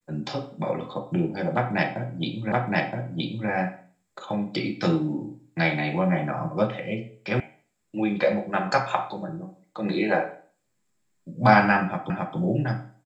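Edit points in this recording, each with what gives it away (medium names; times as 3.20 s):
2.52 s: repeat of the last 0.97 s
7.40 s: sound stops dead
12.10 s: repeat of the last 0.27 s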